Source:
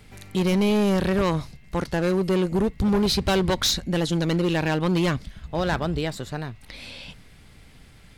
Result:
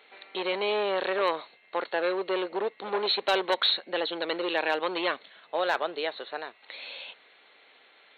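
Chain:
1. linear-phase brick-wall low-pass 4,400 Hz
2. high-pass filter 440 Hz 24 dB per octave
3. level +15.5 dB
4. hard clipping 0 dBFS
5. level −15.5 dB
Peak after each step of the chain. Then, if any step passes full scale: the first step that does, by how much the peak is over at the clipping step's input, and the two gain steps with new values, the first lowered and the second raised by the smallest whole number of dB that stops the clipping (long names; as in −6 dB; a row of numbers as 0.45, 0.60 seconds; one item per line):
−14.5, −11.0, +4.5, 0.0, −15.5 dBFS
step 3, 4.5 dB
step 3 +10.5 dB, step 5 −10.5 dB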